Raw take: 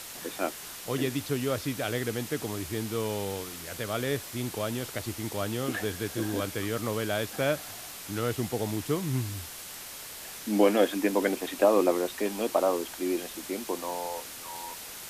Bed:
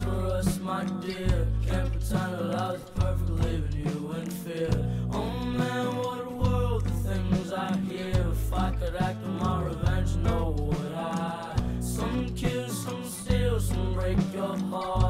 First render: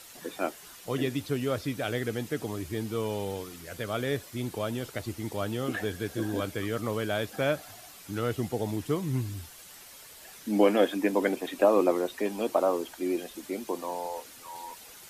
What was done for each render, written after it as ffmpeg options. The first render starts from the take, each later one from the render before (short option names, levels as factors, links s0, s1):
-af "afftdn=nr=9:nf=-42"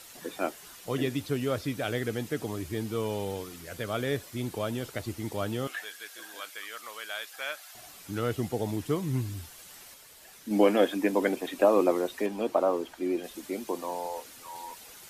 -filter_complex "[0:a]asettb=1/sr,asplit=3[s0][s1][s2];[s0]atrim=end=5.674[s3];[s1]atrim=start=5.67:end=7.75,asetpts=PTS-STARTPTS,afade=t=in:d=0.004:c=qsin,afade=t=out:st=2.076:d=0.004:c=qsin,highpass=1300[s4];[s2]atrim=start=7.746[s5];[s3][s4]acrossfade=d=0.004:c1=hsin:c2=qsin[s6];[s6][s5]acrossfade=d=0.004:c1=qsin:c2=hsin,asettb=1/sr,asplit=3[s7][s8][s9];[s7]atrim=end=12.264[s10];[s8]atrim=start=12.26:end=13.24,asetpts=PTS-STARTPTS,afade=t=in:d=0.004:c=qsin,afade=t=out:st=0.976:d=0.004:c=qsin,highshelf=f=4700:g=-9[s11];[s9]atrim=start=13.236[s12];[s10][s11]acrossfade=d=0.004:c1=hsin:c2=qsin[s13];[s13][s12]acrossfade=d=0.004:c1=qsin:c2=hsin,asplit=3[s14][s15][s16];[s14]atrim=end=9.942[s17];[s15]atrim=start=9.938:end=10.512,asetpts=PTS-STARTPTS,volume=0.668[s18];[s16]atrim=start=10.508[s19];[s17][s18]acrossfade=d=0.004:c1=hsin:c2=hsin[s20];[s20][s19]acrossfade=d=0.004:c1=hsin:c2=hsin"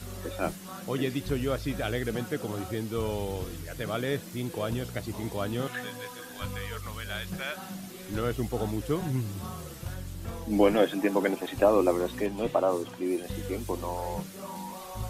-filter_complex "[1:a]volume=0.251[s0];[0:a][s0]amix=inputs=2:normalize=0"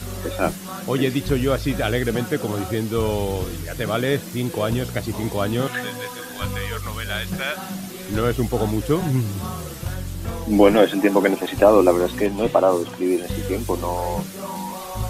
-af "volume=2.82,alimiter=limit=0.794:level=0:latency=1"